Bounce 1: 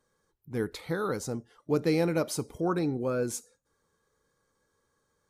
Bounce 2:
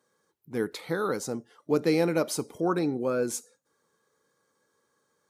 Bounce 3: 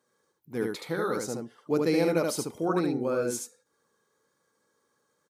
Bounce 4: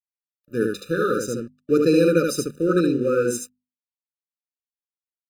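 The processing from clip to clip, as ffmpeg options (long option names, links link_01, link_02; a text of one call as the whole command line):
ffmpeg -i in.wav -af "highpass=180,volume=2.5dB" out.wav
ffmpeg -i in.wav -af "aecho=1:1:74:0.708,volume=-2dB" out.wav
ffmpeg -i in.wav -af "aeval=exprs='sgn(val(0))*max(abs(val(0))-0.00355,0)':channel_layout=same,bandreject=frequency=50:width_type=h:width=6,bandreject=frequency=100:width_type=h:width=6,bandreject=frequency=150:width_type=h:width=6,bandreject=frequency=200:width_type=h:width=6,bandreject=frequency=250:width_type=h:width=6,afftfilt=real='re*eq(mod(floor(b*sr/1024/590),2),0)':imag='im*eq(mod(floor(b*sr/1024/590),2),0)':win_size=1024:overlap=0.75,volume=8.5dB" out.wav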